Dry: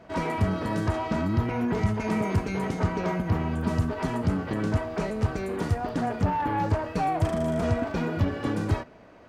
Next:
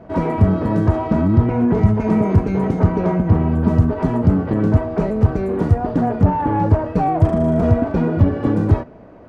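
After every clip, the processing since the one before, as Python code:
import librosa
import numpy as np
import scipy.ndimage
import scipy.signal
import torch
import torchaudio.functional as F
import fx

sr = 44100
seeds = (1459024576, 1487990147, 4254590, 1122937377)

y = fx.tilt_shelf(x, sr, db=9.5, hz=1500.0)
y = F.gain(torch.from_numpy(y), 2.0).numpy()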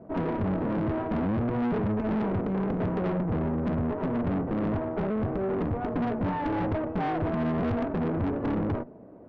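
y = fx.bandpass_q(x, sr, hz=290.0, q=0.65)
y = fx.tube_stage(y, sr, drive_db=25.0, bias=0.75)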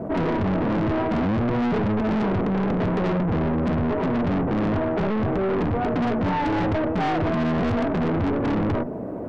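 y = fx.fold_sine(x, sr, drive_db=4, ceiling_db=-21.0)
y = fx.env_flatten(y, sr, amount_pct=50)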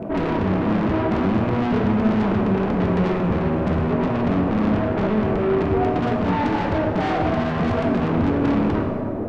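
y = fx.rattle_buzz(x, sr, strikes_db=-27.0, level_db=-36.0)
y = fx.rev_plate(y, sr, seeds[0], rt60_s=2.3, hf_ratio=0.6, predelay_ms=0, drr_db=2.0)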